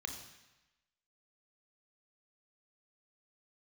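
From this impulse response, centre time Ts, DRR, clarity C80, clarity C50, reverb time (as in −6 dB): 25 ms, 4.0 dB, 9.0 dB, 7.0 dB, 1.0 s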